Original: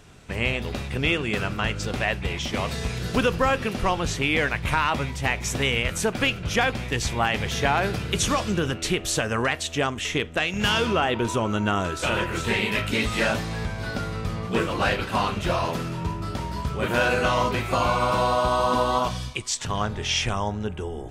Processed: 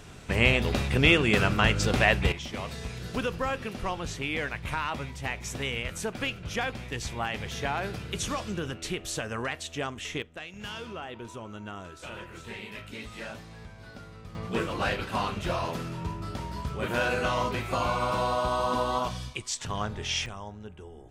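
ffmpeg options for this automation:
-af "asetnsamples=n=441:p=0,asendcmd='2.32 volume volume -8.5dB;10.22 volume volume -16.5dB;14.35 volume volume -5.5dB;20.26 volume volume -14dB',volume=3dB"

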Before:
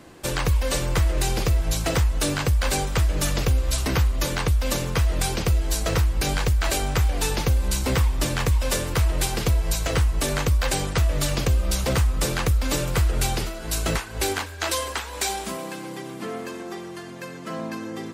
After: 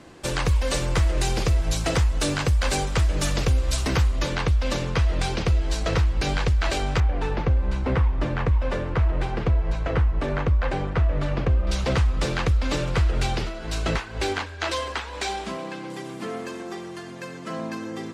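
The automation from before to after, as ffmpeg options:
-af "asetnsamples=n=441:p=0,asendcmd='4.19 lowpass f 4800;7 lowpass f 1800;11.67 lowpass f 4500;15.9 lowpass f 9100',lowpass=8.3k"

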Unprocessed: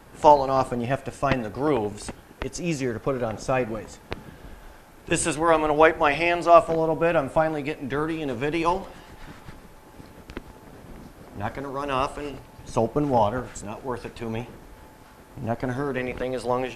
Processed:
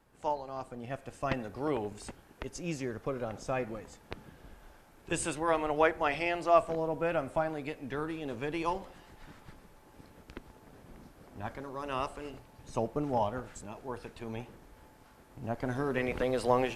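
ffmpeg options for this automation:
-af "volume=-2dB,afade=t=in:st=0.66:d=0.65:silence=0.375837,afade=t=in:st=15.41:d=0.84:silence=0.421697"

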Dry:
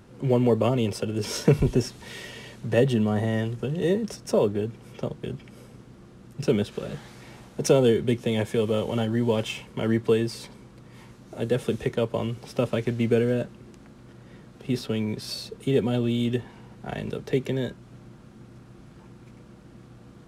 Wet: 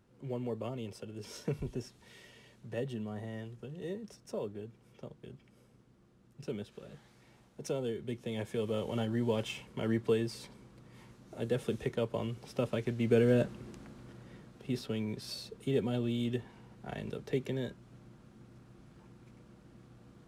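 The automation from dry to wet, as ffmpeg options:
-af "afade=t=in:st=7.97:d=1.03:silence=0.375837,afade=t=in:st=13.01:d=0.47:silence=0.398107,afade=t=out:st=13.48:d=1.22:silence=0.375837"

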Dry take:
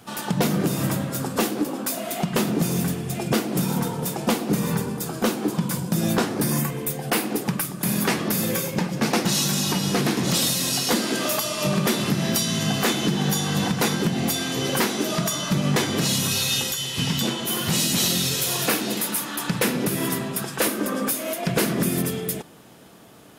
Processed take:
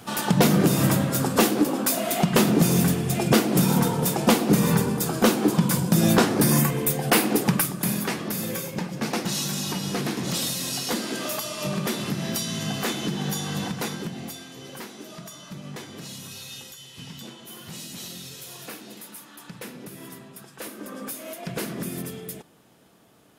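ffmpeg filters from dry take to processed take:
-af "volume=11dB,afade=t=out:st=7.59:d=0.44:silence=0.354813,afade=t=out:st=13.52:d=0.97:silence=0.281838,afade=t=in:st=20.54:d=0.69:silence=0.421697"

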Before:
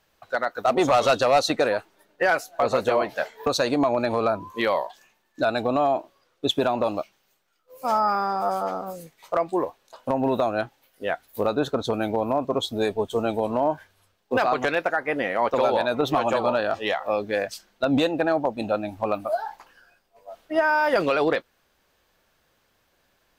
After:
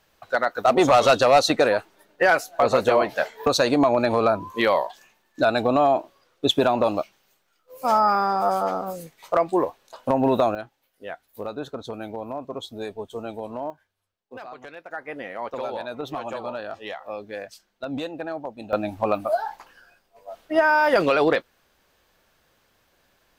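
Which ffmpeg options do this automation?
-af "asetnsamples=n=441:p=0,asendcmd='10.55 volume volume -8.5dB;13.7 volume volume -17.5dB;14.91 volume volume -9dB;18.73 volume volume 2.5dB',volume=3dB"

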